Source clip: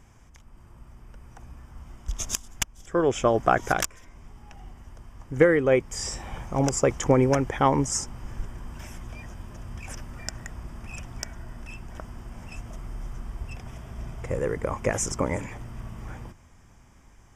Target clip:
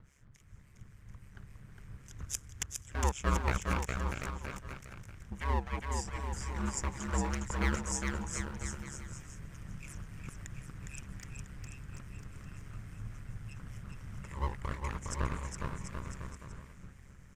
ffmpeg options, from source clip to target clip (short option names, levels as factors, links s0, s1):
-filter_complex "[0:a]equalizer=f=125:t=o:w=1:g=3,equalizer=f=250:t=o:w=1:g=-10,equalizer=f=500:t=o:w=1:g=8,equalizer=f=1000:t=o:w=1:g=7,equalizer=f=4000:t=o:w=1:g=-6,equalizer=f=8000:t=o:w=1:g=3,asplit=2[s0][s1];[s1]acompressor=threshold=0.0158:ratio=6,volume=1.19[s2];[s0][s2]amix=inputs=2:normalize=0,acrossover=split=1000[s3][s4];[s3]aeval=exprs='val(0)*(1-1/2+1/2*cos(2*PI*3.6*n/s))':c=same[s5];[s4]aeval=exprs='val(0)*(1-1/2-1/2*cos(2*PI*3.6*n/s))':c=same[s6];[s5][s6]amix=inputs=2:normalize=0,acrossover=split=330|1600[s7][s8][s9];[s8]aeval=exprs='abs(val(0))':c=same[s10];[s7][s10][s9]amix=inputs=3:normalize=0,aeval=exprs='val(0)*sin(2*PI*69*n/s)':c=same,aecho=1:1:410|738|1000|1210|1378:0.631|0.398|0.251|0.158|0.1,volume=0.422"